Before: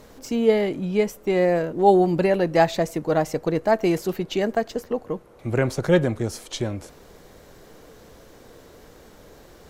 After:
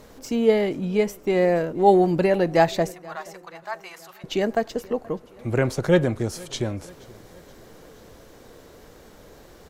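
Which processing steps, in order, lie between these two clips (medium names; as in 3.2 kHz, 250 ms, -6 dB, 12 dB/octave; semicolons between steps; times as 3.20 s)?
2.92–4.24 s: ladder high-pass 890 Hz, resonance 40%; feedback delay 477 ms, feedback 54%, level -23.5 dB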